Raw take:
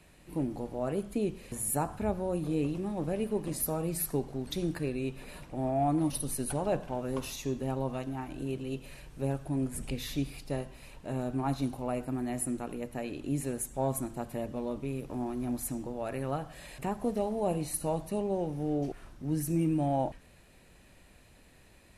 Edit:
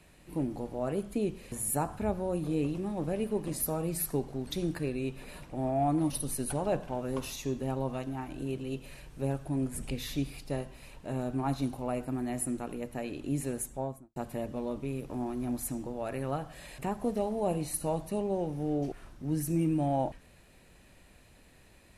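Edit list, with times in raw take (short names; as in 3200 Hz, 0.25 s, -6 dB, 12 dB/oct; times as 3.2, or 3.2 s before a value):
13.59–14.16 studio fade out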